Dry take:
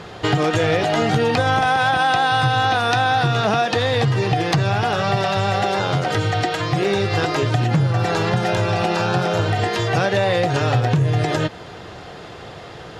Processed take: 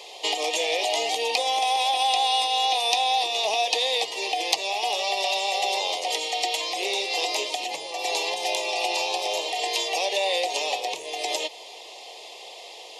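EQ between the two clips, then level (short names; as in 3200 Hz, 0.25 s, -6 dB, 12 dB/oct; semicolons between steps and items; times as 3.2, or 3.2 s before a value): HPF 410 Hz 24 dB/oct; Chebyshev band-stop 890–2400 Hz, order 2; tilt +3.5 dB/oct; -3.5 dB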